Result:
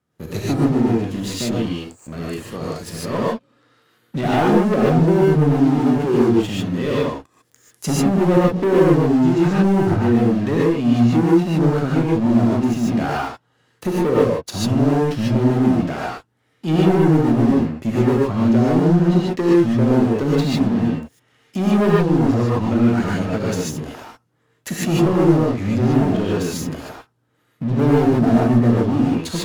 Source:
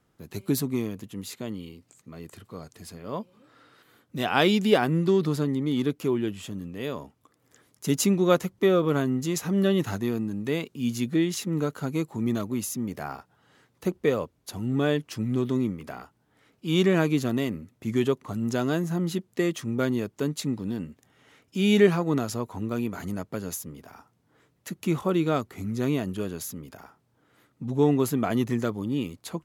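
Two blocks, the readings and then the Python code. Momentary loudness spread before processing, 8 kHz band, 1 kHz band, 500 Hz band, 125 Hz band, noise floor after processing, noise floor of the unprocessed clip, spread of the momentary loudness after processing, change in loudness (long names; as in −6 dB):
16 LU, +3.0 dB, +10.0 dB, +8.0 dB, +11.5 dB, −64 dBFS, −69 dBFS, 14 LU, +9.5 dB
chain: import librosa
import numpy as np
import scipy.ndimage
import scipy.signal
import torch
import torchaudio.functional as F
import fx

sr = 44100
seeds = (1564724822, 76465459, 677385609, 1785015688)

p1 = scipy.signal.sosfilt(scipy.signal.butter(2, 67.0, 'highpass', fs=sr, output='sos'), x)
p2 = fx.env_lowpass_down(p1, sr, base_hz=460.0, full_db=-20.0)
p3 = fx.peak_eq(p2, sr, hz=110.0, db=3.0, octaves=2.3)
p4 = fx.leveller(p3, sr, passes=3)
p5 = np.clip(10.0 ** (20.5 / 20.0) * p4, -1.0, 1.0) / 10.0 ** (20.5 / 20.0)
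p6 = p4 + F.gain(torch.from_numpy(p5), -4.5).numpy()
p7 = fx.rev_gated(p6, sr, seeds[0], gate_ms=170, shape='rising', drr_db=-6.0)
y = F.gain(torch.from_numpy(p7), -6.5).numpy()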